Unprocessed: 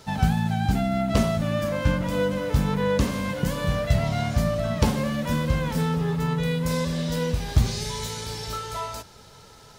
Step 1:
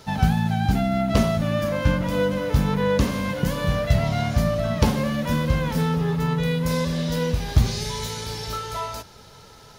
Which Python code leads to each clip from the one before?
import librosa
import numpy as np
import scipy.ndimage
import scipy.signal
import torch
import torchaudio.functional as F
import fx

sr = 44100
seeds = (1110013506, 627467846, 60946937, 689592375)

y = fx.peak_eq(x, sr, hz=8000.0, db=-6.0, octaves=0.29)
y = y * librosa.db_to_amplitude(2.0)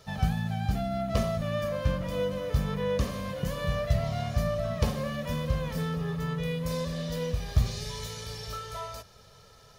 y = x + 0.5 * np.pad(x, (int(1.7 * sr / 1000.0), 0))[:len(x)]
y = y * librosa.db_to_amplitude(-9.0)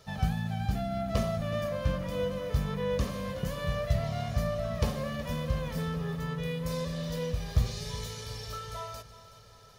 y = fx.echo_feedback(x, sr, ms=372, feedback_pct=51, wet_db=-16.0)
y = y * librosa.db_to_amplitude(-2.0)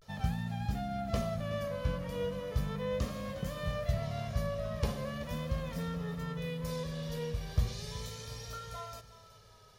y = fx.vibrato(x, sr, rate_hz=0.38, depth_cents=62.0)
y = y * librosa.db_to_amplitude(-4.0)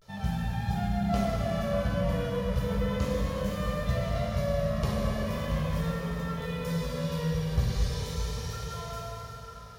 y = fx.rev_plate(x, sr, seeds[0], rt60_s=4.6, hf_ratio=0.65, predelay_ms=0, drr_db=-4.5)